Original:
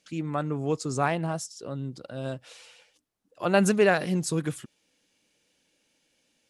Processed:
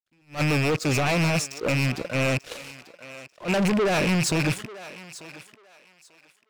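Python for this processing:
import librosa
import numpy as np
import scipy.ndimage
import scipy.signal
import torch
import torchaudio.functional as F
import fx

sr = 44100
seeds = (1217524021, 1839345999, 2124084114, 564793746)

p1 = fx.rattle_buzz(x, sr, strikes_db=-38.0, level_db=-20.0)
p2 = fx.lowpass(p1, sr, hz=2000.0, slope=6)
p3 = fx.low_shelf(p2, sr, hz=380.0, db=-4.5)
p4 = fx.over_compress(p3, sr, threshold_db=-31.0, ratio=-0.5)
p5 = p3 + (p4 * 10.0 ** (0.5 / 20.0))
p6 = fx.leveller(p5, sr, passes=3)
p7 = np.sign(p6) * np.maximum(np.abs(p6) - 10.0 ** (-44.0 / 20.0), 0.0)
p8 = fx.rotary(p7, sr, hz=7.0)
p9 = 10.0 ** (-23.5 / 20.0) * np.tanh(p8 / 10.0 ** (-23.5 / 20.0))
p10 = p9 + fx.echo_thinned(p9, sr, ms=891, feedback_pct=24, hz=510.0, wet_db=-15.0, dry=0)
p11 = fx.attack_slew(p10, sr, db_per_s=260.0)
y = p11 * 10.0 ** (3.5 / 20.0)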